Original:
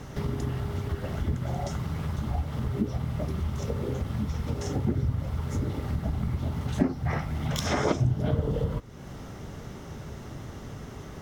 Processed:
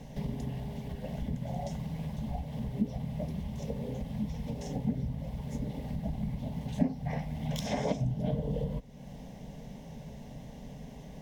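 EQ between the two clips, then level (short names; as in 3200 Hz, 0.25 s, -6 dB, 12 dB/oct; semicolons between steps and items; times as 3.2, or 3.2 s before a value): tone controls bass +3 dB, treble -12 dB; high shelf 5600 Hz +9.5 dB; fixed phaser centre 350 Hz, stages 6; -3.0 dB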